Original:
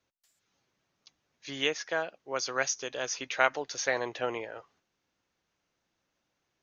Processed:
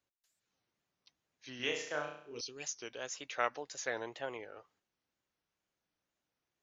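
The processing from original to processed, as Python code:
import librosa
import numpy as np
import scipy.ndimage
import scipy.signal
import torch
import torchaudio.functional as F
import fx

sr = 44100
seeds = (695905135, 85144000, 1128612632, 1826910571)

y = fx.wow_flutter(x, sr, seeds[0], rate_hz=2.1, depth_cents=150.0)
y = fx.spec_box(y, sr, start_s=2.04, length_s=0.59, low_hz=490.0, high_hz=2300.0, gain_db=-21)
y = fx.room_flutter(y, sr, wall_m=5.7, rt60_s=0.59, at=(1.56, 2.41))
y = y * 10.0 ** (-8.5 / 20.0)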